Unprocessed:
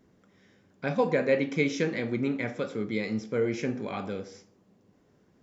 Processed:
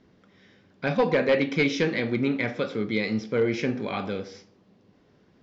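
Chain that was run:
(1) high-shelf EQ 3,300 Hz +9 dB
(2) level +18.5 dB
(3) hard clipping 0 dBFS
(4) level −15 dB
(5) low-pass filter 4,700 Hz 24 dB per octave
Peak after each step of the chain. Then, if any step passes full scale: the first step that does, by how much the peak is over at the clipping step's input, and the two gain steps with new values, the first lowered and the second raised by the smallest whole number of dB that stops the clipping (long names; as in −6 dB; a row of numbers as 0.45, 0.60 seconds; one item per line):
−10.0, +8.5, 0.0, −15.0, −14.0 dBFS
step 2, 8.5 dB
step 2 +9.5 dB, step 4 −6 dB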